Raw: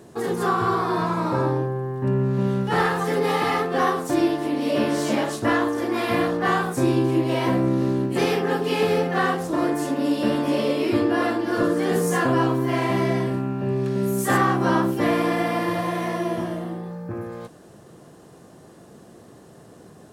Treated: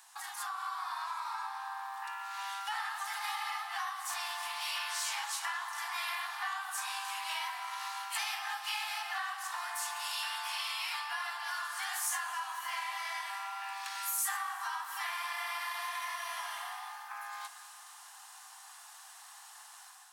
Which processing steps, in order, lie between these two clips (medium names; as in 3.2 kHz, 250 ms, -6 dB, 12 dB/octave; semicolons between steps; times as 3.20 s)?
steep high-pass 770 Hz 96 dB/octave; on a send at -11 dB: reverberation RT60 2.2 s, pre-delay 129 ms; on the sum: compression 6:1, threshold -38 dBFS, peak gain reduction 18.5 dB; treble shelf 2.4 kHz +8 dB; level rider gain up to 6 dB; trim -6 dB